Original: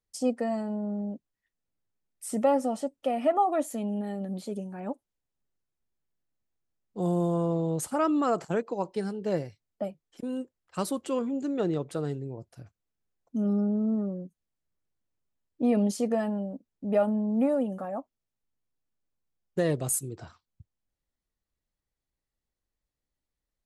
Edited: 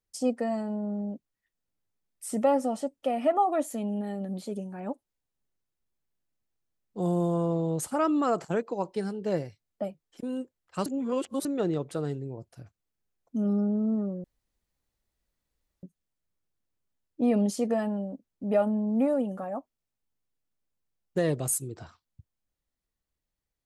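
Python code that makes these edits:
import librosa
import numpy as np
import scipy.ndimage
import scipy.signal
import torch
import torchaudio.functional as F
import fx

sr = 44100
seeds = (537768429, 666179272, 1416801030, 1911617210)

y = fx.edit(x, sr, fx.reverse_span(start_s=10.86, length_s=0.59),
    fx.insert_room_tone(at_s=14.24, length_s=1.59), tone=tone)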